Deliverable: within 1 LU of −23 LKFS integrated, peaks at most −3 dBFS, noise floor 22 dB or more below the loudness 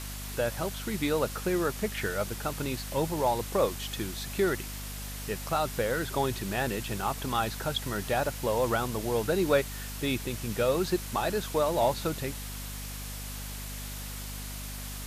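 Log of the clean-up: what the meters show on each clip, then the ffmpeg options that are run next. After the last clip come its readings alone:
mains hum 50 Hz; hum harmonics up to 250 Hz; level of the hum −38 dBFS; background noise floor −39 dBFS; target noise floor −53 dBFS; integrated loudness −31.0 LKFS; sample peak −14.0 dBFS; target loudness −23.0 LKFS
→ -af "bandreject=frequency=50:width_type=h:width=4,bandreject=frequency=100:width_type=h:width=4,bandreject=frequency=150:width_type=h:width=4,bandreject=frequency=200:width_type=h:width=4,bandreject=frequency=250:width_type=h:width=4"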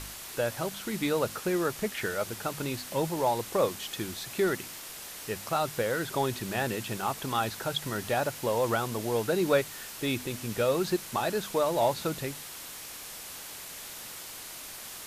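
mains hum none found; background noise floor −43 dBFS; target noise floor −53 dBFS
→ -af "afftdn=noise_reduction=10:noise_floor=-43"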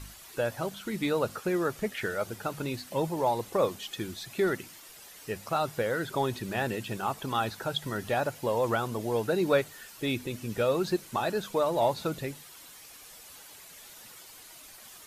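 background noise floor −50 dBFS; target noise floor −53 dBFS
→ -af "afftdn=noise_reduction=6:noise_floor=-50"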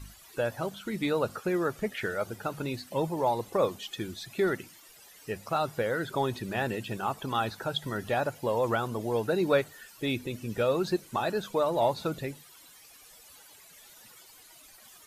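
background noise floor −54 dBFS; integrated loudness −31.0 LKFS; sample peak −14.0 dBFS; target loudness −23.0 LKFS
→ -af "volume=8dB"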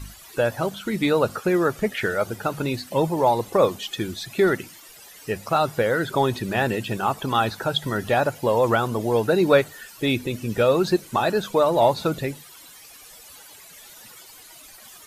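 integrated loudness −23.0 LKFS; sample peak −6.0 dBFS; background noise floor −46 dBFS

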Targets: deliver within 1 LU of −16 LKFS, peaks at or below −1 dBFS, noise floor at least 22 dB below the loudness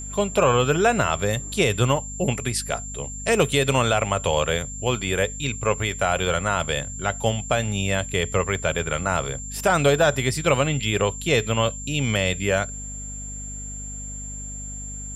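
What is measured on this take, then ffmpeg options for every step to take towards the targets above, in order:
mains hum 50 Hz; hum harmonics up to 250 Hz; level of the hum −35 dBFS; interfering tone 7,300 Hz; level of the tone −34 dBFS; integrated loudness −23.0 LKFS; sample peak −7.0 dBFS; target loudness −16.0 LKFS
→ -af "bandreject=frequency=50:width_type=h:width=6,bandreject=frequency=100:width_type=h:width=6,bandreject=frequency=150:width_type=h:width=6,bandreject=frequency=200:width_type=h:width=6,bandreject=frequency=250:width_type=h:width=6"
-af "bandreject=frequency=7300:width=30"
-af "volume=7dB,alimiter=limit=-1dB:level=0:latency=1"

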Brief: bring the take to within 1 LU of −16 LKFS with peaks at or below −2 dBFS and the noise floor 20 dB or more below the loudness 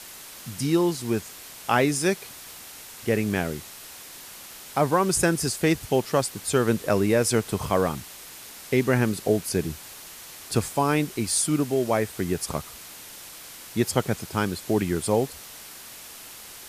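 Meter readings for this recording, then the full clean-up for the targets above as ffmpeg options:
background noise floor −43 dBFS; target noise floor −45 dBFS; integrated loudness −25.0 LKFS; sample peak −6.5 dBFS; target loudness −16.0 LKFS
→ -af "afftdn=noise_reduction=6:noise_floor=-43"
-af "volume=9dB,alimiter=limit=-2dB:level=0:latency=1"

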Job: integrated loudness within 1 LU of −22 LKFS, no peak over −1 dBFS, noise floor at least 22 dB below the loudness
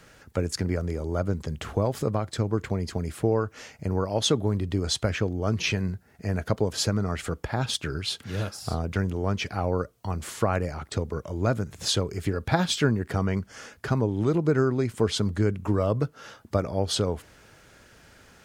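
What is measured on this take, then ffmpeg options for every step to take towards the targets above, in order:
integrated loudness −27.5 LKFS; sample peak −7.5 dBFS; target loudness −22.0 LKFS
→ -af "volume=5.5dB"

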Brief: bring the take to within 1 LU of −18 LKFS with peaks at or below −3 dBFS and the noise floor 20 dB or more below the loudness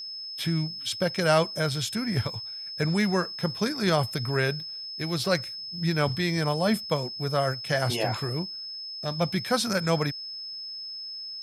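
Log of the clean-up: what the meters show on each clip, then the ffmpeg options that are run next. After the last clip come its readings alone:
interfering tone 5,200 Hz; level of the tone −35 dBFS; integrated loudness −27.5 LKFS; sample peak −9.0 dBFS; target loudness −18.0 LKFS
→ -af "bandreject=frequency=5200:width=30"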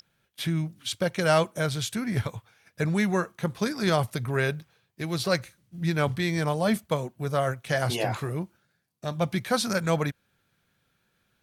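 interfering tone none found; integrated loudness −28.0 LKFS; sample peak −9.0 dBFS; target loudness −18.0 LKFS
→ -af "volume=10dB,alimiter=limit=-3dB:level=0:latency=1"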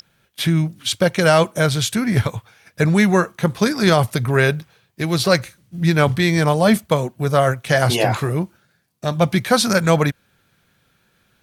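integrated loudness −18.0 LKFS; sample peak −3.0 dBFS; background noise floor −63 dBFS

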